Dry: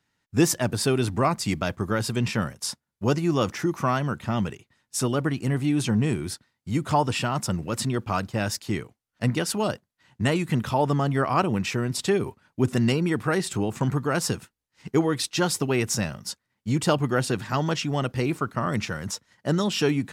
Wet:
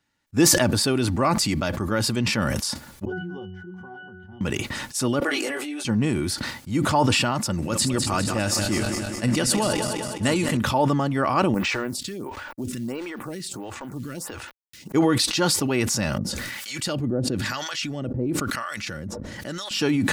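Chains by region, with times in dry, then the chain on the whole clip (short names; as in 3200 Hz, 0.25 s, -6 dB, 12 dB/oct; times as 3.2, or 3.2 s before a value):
3.05–4.41 bell 1000 Hz +4 dB 0.24 oct + octave resonator F#, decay 0.4 s
5.2–5.85 HPF 410 Hz 24 dB/oct + bell 990 Hz -8.5 dB 0.21 oct + detuned doubles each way 12 cents
7.53–10.57 regenerating reverse delay 0.102 s, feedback 81%, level -11.5 dB + bell 8300 Hz +7.5 dB 1.1 oct
11.54–14.92 companded quantiser 6-bit + compressor 3:1, threshold -29 dBFS + photocell phaser 1.5 Hz
16.18–19.71 bell 940 Hz -9 dB 0.79 oct + harmonic tremolo 1 Hz, depth 100%, crossover 810 Hz + backwards sustainer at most 43 dB/s
whole clip: comb 3.5 ms, depth 32%; dynamic EQ 4500 Hz, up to +5 dB, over -51 dBFS, Q 7; sustainer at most 21 dB/s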